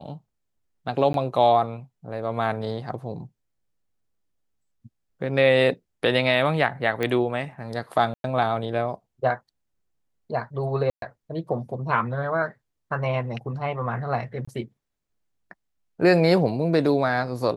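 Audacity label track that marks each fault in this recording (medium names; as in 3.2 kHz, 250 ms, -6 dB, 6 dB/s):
1.130000	1.140000	dropout 12 ms
7.030000	7.030000	pop -13 dBFS
8.140000	8.240000	dropout 102 ms
10.900000	11.020000	dropout 122 ms
14.450000	14.470000	dropout 25 ms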